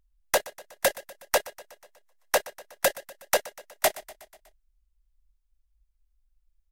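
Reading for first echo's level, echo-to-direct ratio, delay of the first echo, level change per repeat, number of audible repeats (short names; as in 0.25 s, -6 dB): -19.0 dB, -17.0 dB, 0.122 s, -4.5 dB, 4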